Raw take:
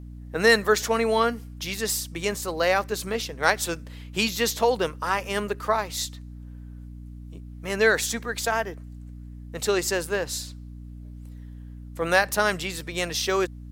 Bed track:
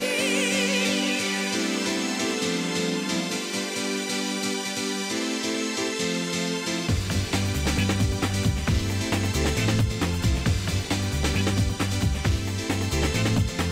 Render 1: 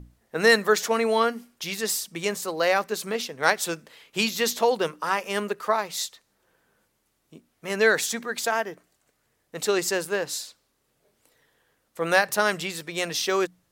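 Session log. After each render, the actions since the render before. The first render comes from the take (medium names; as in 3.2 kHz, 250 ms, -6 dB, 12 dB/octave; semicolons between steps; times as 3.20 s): hum notches 60/120/180/240/300 Hz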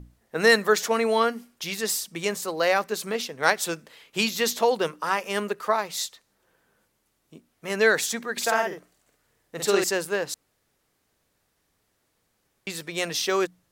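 8.32–9.84 s: doubling 50 ms -3 dB; 10.34–12.67 s: room tone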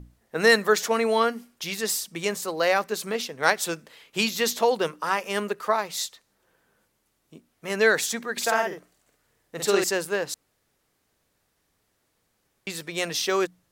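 no audible change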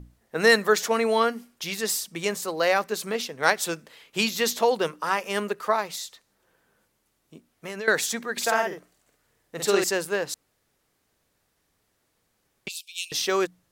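5.95–7.88 s: compression 5:1, threshold -31 dBFS; 12.68–13.12 s: steep high-pass 2.5 kHz 96 dB/octave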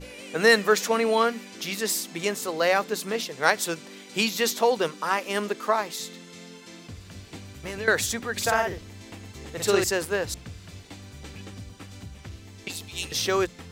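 add bed track -17.5 dB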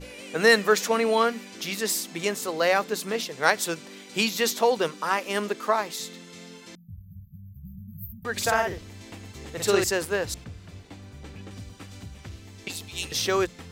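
6.75–8.25 s: brick-wall FIR band-stop 210–12000 Hz; 10.44–11.51 s: treble shelf 2.4 kHz -8 dB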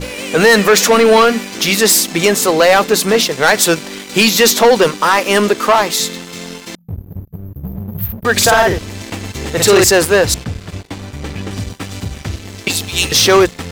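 in parallel at +1.5 dB: peak limiter -15 dBFS, peak gain reduction 10.5 dB; on the sum: waveshaping leveller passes 3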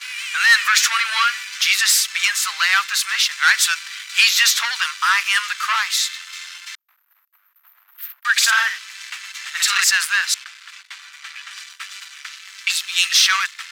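steep high-pass 1.3 kHz 36 dB/octave; treble shelf 8.9 kHz -11 dB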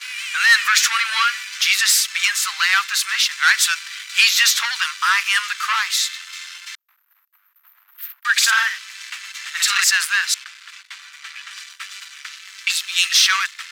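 high-pass 760 Hz 12 dB/octave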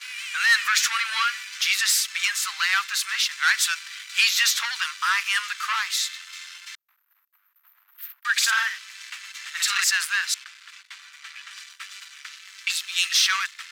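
trim -5.5 dB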